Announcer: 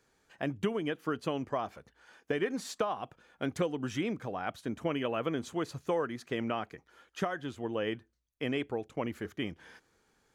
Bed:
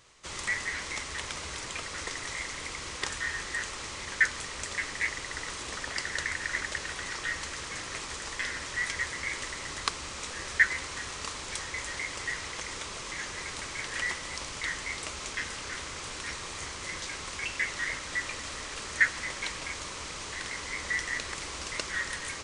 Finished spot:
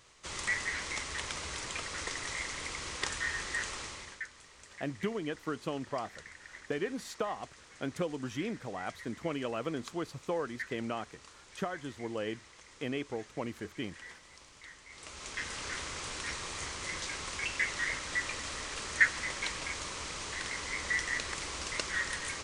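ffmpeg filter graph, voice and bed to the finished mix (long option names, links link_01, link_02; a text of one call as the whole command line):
ffmpeg -i stem1.wav -i stem2.wav -filter_complex "[0:a]adelay=4400,volume=-3dB[link_01];[1:a]volume=15.5dB,afade=type=out:start_time=3.75:duration=0.47:silence=0.149624,afade=type=in:start_time=14.89:duration=0.75:silence=0.141254[link_02];[link_01][link_02]amix=inputs=2:normalize=0" out.wav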